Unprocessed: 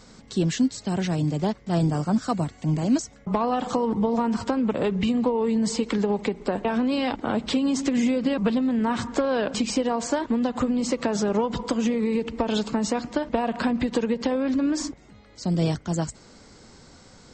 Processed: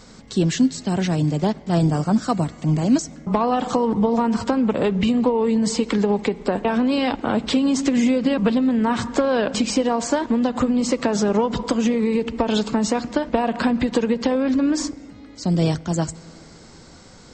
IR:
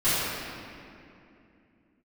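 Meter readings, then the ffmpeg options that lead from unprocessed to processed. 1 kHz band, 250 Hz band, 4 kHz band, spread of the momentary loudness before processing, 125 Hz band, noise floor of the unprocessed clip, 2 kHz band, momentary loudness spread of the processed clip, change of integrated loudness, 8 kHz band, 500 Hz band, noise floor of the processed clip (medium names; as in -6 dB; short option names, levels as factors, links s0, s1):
+4.0 dB, +4.0 dB, +4.0 dB, 4 LU, +4.0 dB, -51 dBFS, +4.0 dB, 4 LU, +4.0 dB, +4.0 dB, +4.0 dB, -45 dBFS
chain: -filter_complex "[0:a]asplit=2[s0][s1];[1:a]atrim=start_sample=2205[s2];[s1][s2]afir=irnorm=-1:irlink=0,volume=0.0141[s3];[s0][s3]amix=inputs=2:normalize=0,volume=1.58"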